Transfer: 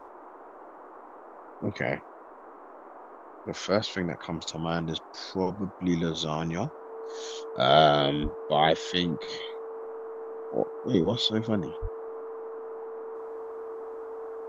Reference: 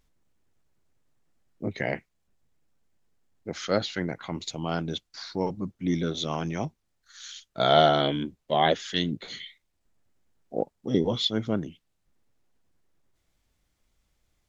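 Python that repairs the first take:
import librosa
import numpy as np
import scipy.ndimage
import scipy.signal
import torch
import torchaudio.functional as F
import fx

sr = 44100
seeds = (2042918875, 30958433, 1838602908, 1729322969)

y = fx.notch(x, sr, hz=450.0, q=30.0)
y = fx.fix_deplosive(y, sr, at_s=(8.22, 11.81))
y = fx.noise_reduce(y, sr, print_start_s=2.11, print_end_s=2.61, reduce_db=27.0)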